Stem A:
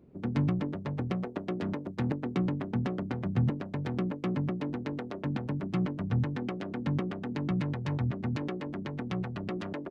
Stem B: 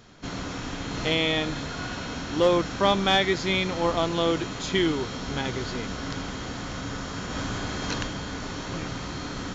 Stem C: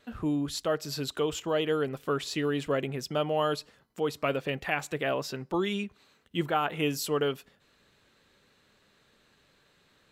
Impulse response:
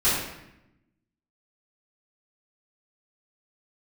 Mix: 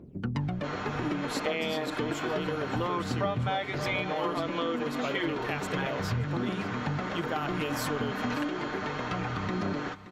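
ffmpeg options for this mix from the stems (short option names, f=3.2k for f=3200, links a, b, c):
-filter_complex "[0:a]aphaser=in_gain=1:out_gain=1:delay=4.4:decay=0.68:speed=0.31:type=triangular,volume=0.5dB,asplit=2[a][b];[b]volume=-17.5dB[c];[1:a]acrossover=split=370 2700:gain=0.0891 1 0.141[d][e][f];[d][e][f]amix=inputs=3:normalize=0,aecho=1:1:6.6:0.78,adelay=400,volume=1.5dB,asplit=2[g][h];[h]volume=-16.5dB[i];[2:a]adelay=800,volume=-2dB,asplit=2[j][k];[k]volume=-17dB[l];[c][i][l]amix=inputs=3:normalize=0,aecho=0:1:573:1[m];[a][g][j][m]amix=inputs=4:normalize=0,acompressor=threshold=-27dB:ratio=6"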